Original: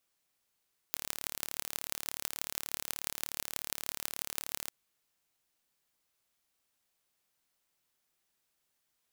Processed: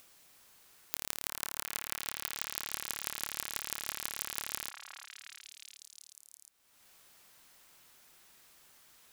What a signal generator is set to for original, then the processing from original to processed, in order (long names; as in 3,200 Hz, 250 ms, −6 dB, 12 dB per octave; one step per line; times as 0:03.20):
impulse train 36.6 per second, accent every 6, −5 dBFS 3.77 s
on a send: echo through a band-pass that steps 359 ms, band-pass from 1,200 Hz, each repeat 0.7 octaves, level −1.5 dB
on the sum: upward compression, threshold −45 dBFS